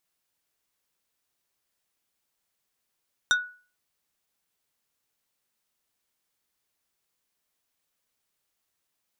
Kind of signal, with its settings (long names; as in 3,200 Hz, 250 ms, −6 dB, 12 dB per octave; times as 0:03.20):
struck wood plate, lowest mode 1,470 Hz, decay 0.39 s, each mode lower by 4 dB, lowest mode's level −16 dB